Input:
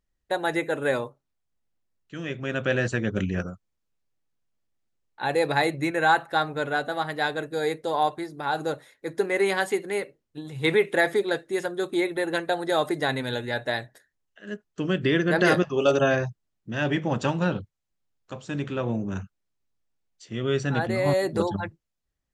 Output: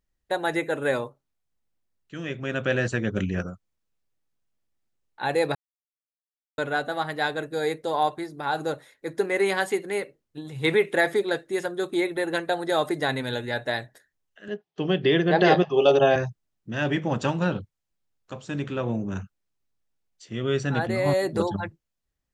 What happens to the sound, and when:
5.55–6.58 s: mute
14.48–16.16 s: cabinet simulation 150–5200 Hz, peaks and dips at 160 Hz +5 dB, 250 Hz -5 dB, 410 Hz +5 dB, 770 Hz +10 dB, 1.4 kHz -6 dB, 3.3 kHz +5 dB

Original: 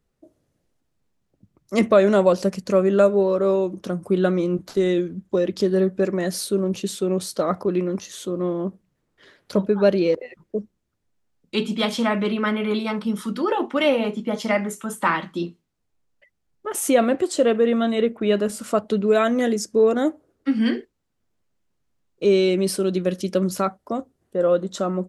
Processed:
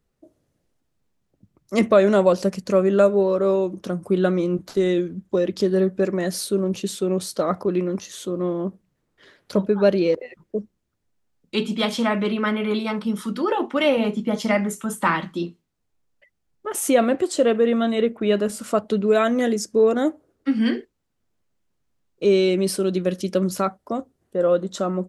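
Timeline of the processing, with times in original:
13.97–15.35 s: tone controls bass +5 dB, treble +2 dB

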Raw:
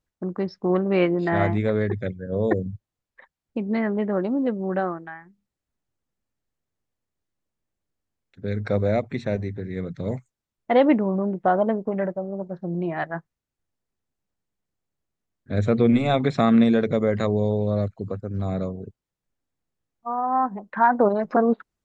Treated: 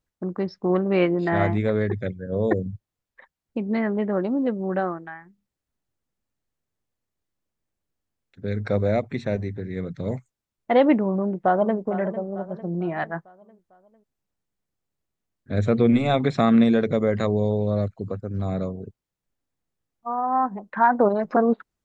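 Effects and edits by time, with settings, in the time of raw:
11.16–11.78 s: echo throw 450 ms, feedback 50%, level -13 dB

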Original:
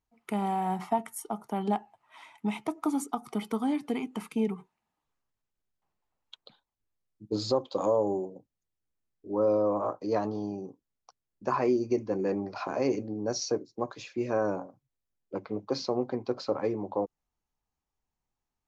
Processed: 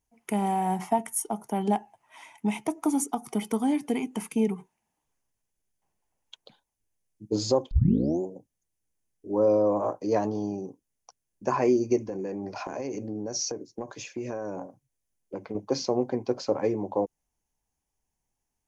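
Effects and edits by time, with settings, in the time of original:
7.71 s: tape start 0.50 s
11.97–15.55 s: compression 10:1, threshold -32 dBFS
whole clip: graphic EQ with 31 bands 1.25 kHz -9 dB, 4 kHz -7 dB, 6.3 kHz +7 dB, 10 kHz +10 dB; trim +3.5 dB

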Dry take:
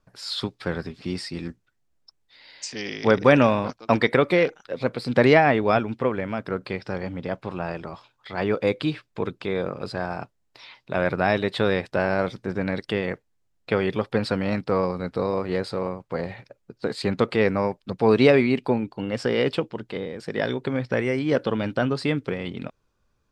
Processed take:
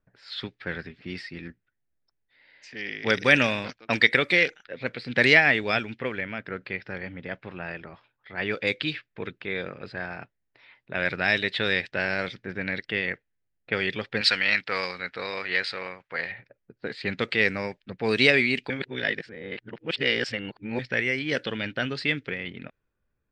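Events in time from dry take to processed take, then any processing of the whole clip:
14.21–16.32 s: tilt shelf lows -10 dB, about 650 Hz
18.70–20.79 s: reverse
whole clip: level-controlled noise filter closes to 990 Hz, open at -14.5 dBFS; FFT filter 460 Hz 0 dB, 1.1 kHz -3 dB, 1.8 kHz +14 dB; trim -7.5 dB

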